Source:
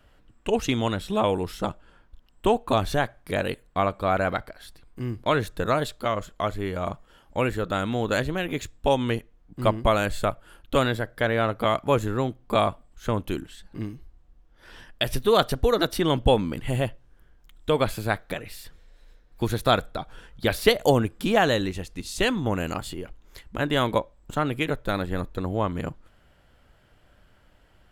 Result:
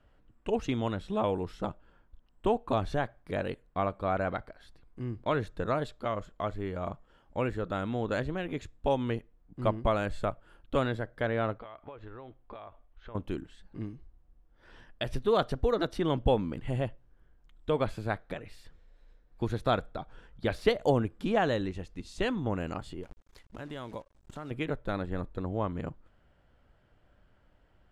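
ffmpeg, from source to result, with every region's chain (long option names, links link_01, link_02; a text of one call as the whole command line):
ffmpeg -i in.wav -filter_complex "[0:a]asettb=1/sr,asplit=3[link_01][link_02][link_03];[link_01]atrim=end=11.584[link_04];[link_02]atrim=start=11.58:end=13.15,asetpts=PTS-STARTPTS,afade=type=in:duration=0.004:curve=qsin,afade=type=out:start_time=1.566:duration=0.004:curve=qsin,equalizer=frequency=180:width_type=o:width=1.6:gain=-14,acompressor=threshold=-34dB:ratio=16:attack=3.2:release=140:knee=1:detection=peak,lowpass=frequency=3900:width=0.5412,lowpass=frequency=3900:width=1.3066[link_05];[link_03]atrim=start=13.146[link_06];[link_04][link_05]acrossfade=duration=0.004:curve1=hsin:curve2=qsin[link_07];[link_07][link_06]acrossfade=duration=0.004:curve1=qsin:curve2=hsin,asettb=1/sr,asplit=3[link_08][link_09][link_10];[link_08]atrim=end=23.034[link_11];[link_09]atrim=start=23.03:end=24.51,asetpts=PTS-STARTPTS,afade=type=in:duration=0.004:curve=qsin,afade=type=out:start_time=1.476:duration=0.004:curve=qsin,highshelf=frequency=6000:gain=11,acrusher=bits=7:dc=4:mix=0:aa=0.000001,acompressor=threshold=-38dB:ratio=2:attack=3.2:release=140:knee=1:detection=peak[link_12];[link_10]atrim=start=24.506[link_13];[link_11][link_12]acrossfade=duration=0.004:curve1=hsin:curve2=qsin[link_14];[link_14][link_13]acrossfade=duration=0.004:curve1=qsin:curve2=hsin,lowpass=8100,highshelf=frequency=2200:gain=-9,volume=-5.5dB" out.wav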